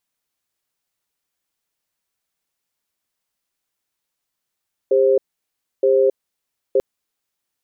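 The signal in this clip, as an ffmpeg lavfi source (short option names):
-f lavfi -i "aevalsrc='0.188*(sin(2*PI*400*t)+sin(2*PI*529*t))*clip(min(mod(t,0.92),0.27-mod(t,0.92))/0.005,0,1)':d=1.89:s=44100"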